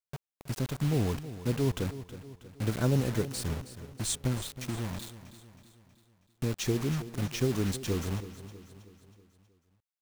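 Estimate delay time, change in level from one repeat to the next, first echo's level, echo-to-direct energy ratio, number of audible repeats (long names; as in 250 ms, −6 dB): 320 ms, −6.0 dB, −14.0 dB, −12.5 dB, 4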